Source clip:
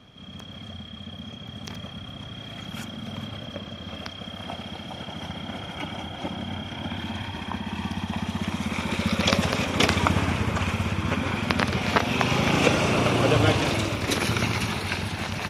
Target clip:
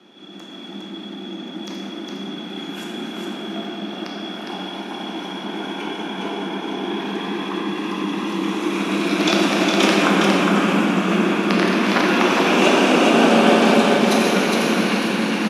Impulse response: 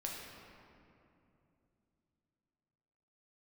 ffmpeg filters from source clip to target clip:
-filter_complex "[0:a]afreqshift=110,aecho=1:1:410:0.631[a];[1:a]atrim=start_sample=2205,asetrate=26901,aresample=44100[b];[a][b]afir=irnorm=-1:irlink=0,volume=1.5dB"

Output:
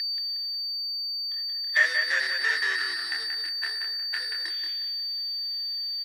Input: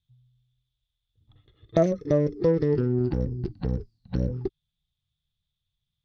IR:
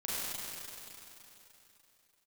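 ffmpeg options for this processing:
-filter_complex "[0:a]agate=range=-33dB:threshold=-50dB:ratio=3:detection=peak,areverse,acompressor=mode=upward:threshold=-29dB:ratio=2.5,areverse,flanger=delay=22.5:depth=5.5:speed=1.5,afreqshift=-53,aresample=16000,asoftclip=type=hard:threshold=-18.5dB,aresample=44100,aeval=exprs='val(0)+0.0158*sin(2*PI*4600*n/s)':c=same,asplit=2[a][b];[b]highpass=f=720:p=1,volume=22dB,asoftclip=type=tanh:threshold=-16dB[c];[a][c]amix=inputs=2:normalize=0,lowpass=f=2.5k:p=1,volume=-6dB,highpass=f=1.8k:t=q:w=16,asplit=2[d][e];[e]adelay=181,lowpass=f=4.5k:p=1,volume=-5dB,asplit=2[f][g];[g]adelay=181,lowpass=f=4.5k:p=1,volume=0.33,asplit=2[h][i];[i]adelay=181,lowpass=f=4.5k:p=1,volume=0.33,asplit=2[j][k];[k]adelay=181,lowpass=f=4.5k:p=1,volume=0.33[l];[d][f][h][j][l]amix=inputs=5:normalize=0"

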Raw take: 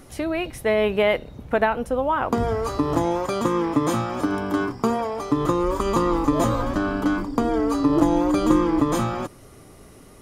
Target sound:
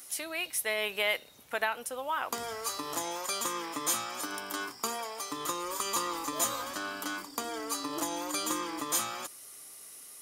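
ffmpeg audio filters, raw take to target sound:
-af "aderivative,volume=7dB"

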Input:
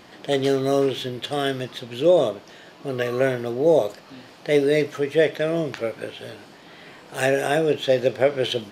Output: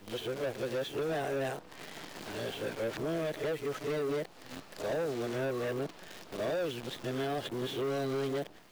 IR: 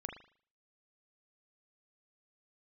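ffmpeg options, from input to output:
-filter_complex "[0:a]areverse,dynaudnorm=f=120:g=7:m=11.5dB,acrusher=bits=6:dc=4:mix=0:aa=0.000001,acrossover=split=170|1300|7300[a][b][c][d];[a]acompressor=threshold=-36dB:ratio=4[e];[b]acompressor=threshold=-17dB:ratio=4[f];[c]acompressor=threshold=-33dB:ratio=4[g];[d]acompressor=threshold=-45dB:ratio=4[h];[e][f][g][h]amix=inputs=4:normalize=0,asoftclip=type=tanh:threshold=-21dB,volume=-8.5dB"

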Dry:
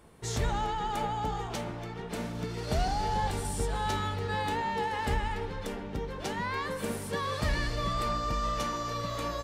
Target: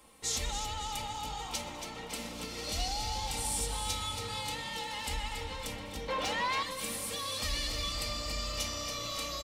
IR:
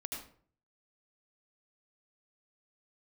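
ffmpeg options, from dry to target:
-filter_complex "[0:a]tiltshelf=f=820:g=-7,aecho=1:1:3.8:0.69,acrossover=split=140|2500[a][b][c];[b]alimiter=level_in=7dB:limit=-24dB:level=0:latency=1:release=161,volume=-7dB[d];[a][d][c]amix=inputs=3:normalize=0,equalizer=f=1.6k:t=o:w=0.4:g=-10,asplit=7[e][f][g][h][i][j][k];[f]adelay=278,afreqshift=32,volume=-8.5dB[l];[g]adelay=556,afreqshift=64,volume=-14.2dB[m];[h]adelay=834,afreqshift=96,volume=-19.9dB[n];[i]adelay=1112,afreqshift=128,volume=-25.5dB[o];[j]adelay=1390,afreqshift=160,volume=-31.2dB[p];[k]adelay=1668,afreqshift=192,volume=-36.9dB[q];[e][l][m][n][o][p][q]amix=inputs=7:normalize=0,asettb=1/sr,asplit=3[r][s][t];[r]atrim=end=6.084[u];[s]atrim=start=6.08:end=6.63,asetpts=PTS-STARTPTS,afade=t=in:d=0.004:c=qsin,afade=t=out:st=0.546:d=0.004:c=qsin,asplit=2[v][w];[w]highpass=f=720:p=1,volume=20dB,asoftclip=type=tanh:threshold=-14.5dB[x];[v][x]amix=inputs=2:normalize=0,lowpass=f=1.4k:p=1,volume=-6dB[y];[t]atrim=start=6.626[z];[u][y]acrossfade=d=0.004:c1=hsin:c2=qsin[aa];[aa][z]acrossfade=d=0.004:c1=qsin:c2=hsin,asplit=2[ab][ac];[1:a]atrim=start_sample=2205,adelay=123[ad];[ac][ad]afir=irnorm=-1:irlink=0,volume=-17.5dB[ae];[ab][ae]amix=inputs=2:normalize=0,volume=-2.5dB"

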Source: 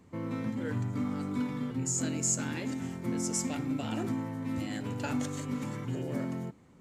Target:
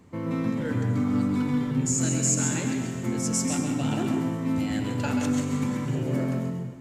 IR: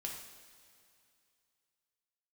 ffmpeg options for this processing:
-filter_complex "[0:a]asplit=2[a][b];[1:a]atrim=start_sample=2205,lowshelf=f=200:g=7.5,adelay=133[c];[b][c]afir=irnorm=-1:irlink=0,volume=-2.5dB[d];[a][d]amix=inputs=2:normalize=0,volume=4.5dB"

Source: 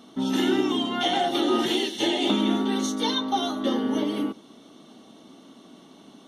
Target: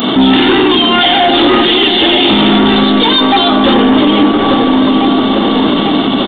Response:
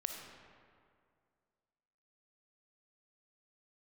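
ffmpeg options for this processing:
-filter_complex "[0:a]asoftclip=type=hard:threshold=-24dB,highshelf=f=2.3k:g=10,asplit=2[a][b];[b]adelay=845,lowpass=f=2.5k:p=1,volume=-15.5dB,asplit=2[c][d];[d]adelay=845,lowpass=f=2.5k:p=1,volume=0.54,asplit=2[e][f];[f]adelay=845,lowpass=f=2.5k:p=1,volume=0.54,asplit=2[g][h];[h]adelay=845,lowpass=f=2.5k:p=1,volume=0.54,asplit=2[i][j];[j]adelay=845,lowpass=f=2.5k:p=1,volume=0.54[k];[a][c][e][g][i][k]amix=inputs=6:normalize=0,asplit=2[l][m];[1:a]atrim=start_sample=2205,asetrate=26460,aresample=44100,lowpass=2.4k[n];[m][n]afir=irnorm=-1:irlink=0,volume=-7.5dB[o];[l][o]amix=inputs=2:normalize=0,aresample=8000,aresample=44100,acompressor=threshold=-31dB:ratio=6,aemphasis=mode=production:type=50kf,alimiter=level_in=34dB:limit=-1dB:release=50:level=0:latency=1,volume=-1dB"

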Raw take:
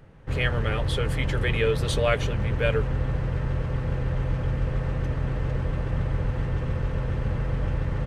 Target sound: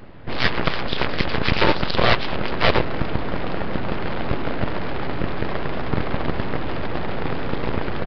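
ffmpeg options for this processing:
-af "aeval=exprs='0.316*(cos(1*acos(clip(val(0)/0.316,-1,1)))-cos(1*PI/2))+0.126*(cos(7*acos(clip(val(0)/0.316,-1,1)))-cos(7*PI/2))':c=same,aeval=exprs='abs(val(0))':c=same,aresample=11025,aresample=44100,volume=6dB"

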